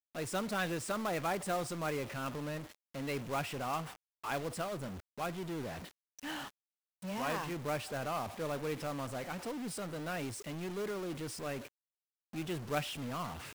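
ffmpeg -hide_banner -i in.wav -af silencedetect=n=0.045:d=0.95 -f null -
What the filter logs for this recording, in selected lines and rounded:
silence_start: 5.26
silence_end: 7.22 | silence_duration: 1.96
silence_start: 7.97
silence_end: 12.73 | silence_duration: 4.76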